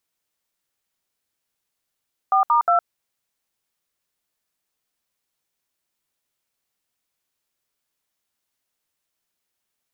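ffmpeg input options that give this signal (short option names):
-f lavfi -i "aevalsrc='0.15*clip(min(mod(t,0.179),0.112-mod(t,0.179))/0.002,0,1)*(eq(floor(t/0.179),0)*(sin(2*PI*770*mod(t,0.179))+sin(2*PI*1209*mod(t,0.179)))+eq(floor(t/0.179),1)*(sin(2*PI*941*mod(t,0.179))+sin(2*PI*1209*mod(t,0.179)))+eq(floor(t/0.179),2)*(sin(2*PI*697*mod(t,0.179))+sin(2*PI*1336*mod(t,0.179))))':d=0.537:s=44100"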